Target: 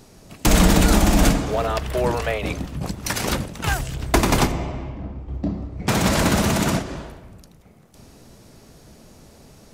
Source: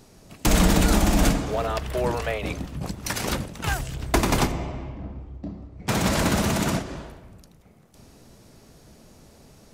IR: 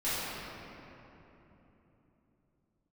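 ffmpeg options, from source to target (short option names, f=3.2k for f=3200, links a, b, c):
-filter_complex "[0:a]asettb=1/sr,asplit=3[a][b][c];[a]atrim=end=5.284[d];[b]atrim=start=5.28:end=5.89,asetpts=PTS-STARTPTS,afade=t=in:d=0.004:c=qsin,afade=t=out:st=0.606:d=0.004:c=qsin,acontrast=61[e];[c]atrim=start=5.886[f];[d][e]acrossfade=d=0.004:c1=hsin:c2=qsin[g];[g][f]acrossfade=d=0.004:c1=qsin:c2=hsin,volume=3.5dB"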